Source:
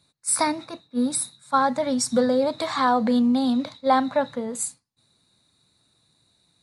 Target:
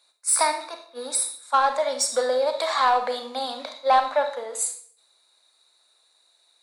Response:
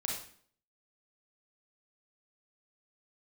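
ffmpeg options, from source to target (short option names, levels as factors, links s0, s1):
-filter_complex "[0:a]highpass=f=510:w=0.5412,highpass=f=510:w=1.3066,asoftclip=type=tanh:threshold=0.237,asplit=2[s0][s1];[1:a]atrim=start_sample=2205[s2];[s1][s2]afir=irnorm=-1:irlink=0,volume=0.631[s3];[s0][s3]amix=inputs=2:normalize=0,volume=0.841"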